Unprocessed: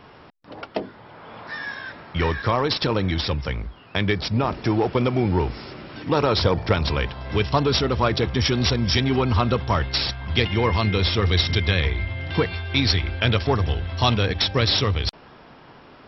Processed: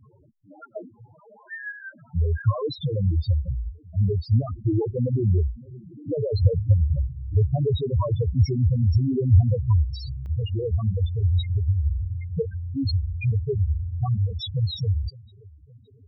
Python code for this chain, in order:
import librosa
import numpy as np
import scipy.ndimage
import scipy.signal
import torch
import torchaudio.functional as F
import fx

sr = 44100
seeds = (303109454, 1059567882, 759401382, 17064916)

y = fx.echo_feedback(x, sr, ms=564, feedback_pct=55, wet_db=-24)
y = fx.spec_topn(y, sr, count=2)
y = fx.peak_eq(y, sr, hz=100.0, db=fx.steps((0.0, 9.5), (10.26, 2.0)), octaves=1.0)